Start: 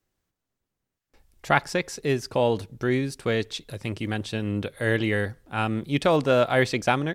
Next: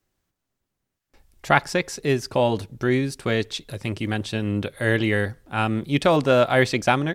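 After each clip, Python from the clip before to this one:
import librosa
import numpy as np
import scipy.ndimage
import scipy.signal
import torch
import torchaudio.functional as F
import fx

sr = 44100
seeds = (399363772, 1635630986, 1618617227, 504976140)

y = fx.notch(x, sr, hz=470.0, q=15.0)
y = F.gain(torch.from_numpy(y), 3.0).numpy()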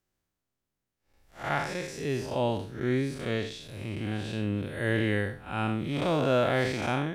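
y = fx.spec_blur(x, sr, span_ms=163.0)
y = F.gain(torch.from_numpy(y), -4.0).numpy()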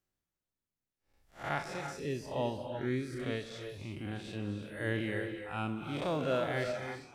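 y = fx.fade_out_tail(x, sr, length_s=0.53)
y = fx.dereverb_blind(y, sr, rt60_s=1.7)
y = fx.rev_gated(y, sr, seeds[0], gate_ms=370, shape='rising', drr_db=6.0)
y = F.gain(torch.from_numpy(y), -5.0).numpy()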